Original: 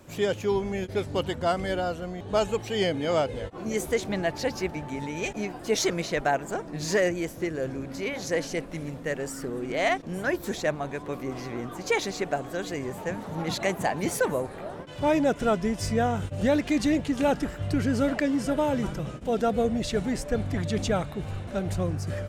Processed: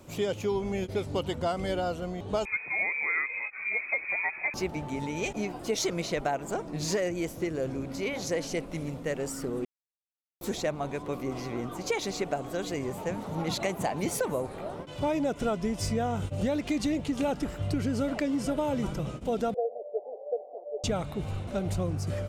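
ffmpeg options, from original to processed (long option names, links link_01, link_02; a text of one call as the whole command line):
ffmpeg -i in.wav -filter_complex "[0:a]asettb=1/sr,asplit=3[link_01][link_02][link_03];[link_01]atrim=end=2.454[link_04];[link_02]atrim=start=2.45:end=4.54,asetpts=PTS-STARTPTS,afade=type=in:duration=0.004:curve=qsin,afade=type=out:start_time=2.086:duration=0.004:curve=qsin,lowpass=frequency=2200:width_type=q:width=0.5098,lowpass=frequency=2200:width_type=q:width=0.6013,lowpass=frequency=2200:width_type=q:width=0.9,lowpass=frequency=2200:width_type=q:width=2.563,afreqshift=-2600[link_05];[link_03]atrim=start=4.536[link_06];[link_04][link_05]acrossfade=duration=0.004:curve1=hsin:curve2=qsin[link_07];[link_07][link_06]acrossfade=duration=0.004:curve1=qsin:curve2=hsin,asettb=1/sr,asplit=3[link_08][link_09][link_10];[link_08]atrim=end=19.544[link_11];[link_09]atrim=start=19.54:end=20.84,asetpts=PTS-STARTPTS,afade=type=in:duration=0.004:curve=qsin,afade=type=out:start_time=1.296:duration=0.004:curve=qsin,asuperpass=centerf=580:order=8:qfactor=1.7[link_12];[link_10]atrim=start=20.836[link_13];[link_11][link_12]acrossfade=duration=0.004:curve1=hsin:curve2=qsin[link_14];[link_14][link_13]acrossfade=duration=0.004:curve1=qsin:curve2=hsin,asplit=3[link_15][link_16][link_17];[link_15]atrim=end=9.65,asetpts=PTS-STARTPTS,afade=type=out:start_time=9.646:duration=0.004:curve=hsin[link_18];[link_16]atrim=start=9.65:end=10.41,asetpts=PTS-STARTPTS,volume=0[link_19];[link_17]atrim=start=10.41,asetpts=PTS-STARTPTS,afade=type=in:duration=0.004:curve=hsin[link_20];[link_18][link_19][link_20]concat=n=3:v=0:a=1,equalizer=frequency=1700:width=4.7:gain=-7.5,acompressor=threshold=-25dB:ratio=6" out.wav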